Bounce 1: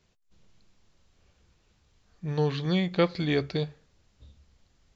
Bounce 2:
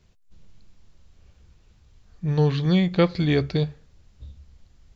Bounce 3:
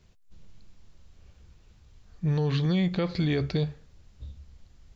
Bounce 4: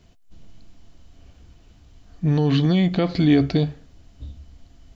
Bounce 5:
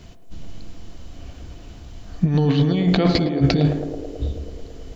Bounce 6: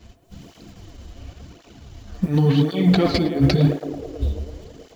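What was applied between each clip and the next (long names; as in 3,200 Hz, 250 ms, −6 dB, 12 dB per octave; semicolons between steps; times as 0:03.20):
low-shelf EQ 150 Hz +11 dB; level +2.5 dB
brickwall limiter −17.5 dBFS, peak gain reduction 11 dB
hollow resonant body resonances 280/680/3,000 Hz, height 11 dB, ringing for 55 ms; level +5 dB
compressor whose output falls as the input rises −22 dBFS, ratio −0.5; feedback echo with a band-pass in the loop 109 ms, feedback 83%, band-pass 460 Hz, level −5 dB; level +6 dB
mu-law and A-law mismatch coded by A; in parallel at −11 dB: wave folding −13 dBFS; on the sum: through-zero flanger with one copy inverted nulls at 0.92 Hz, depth 7.9 ms; level +1.5 dB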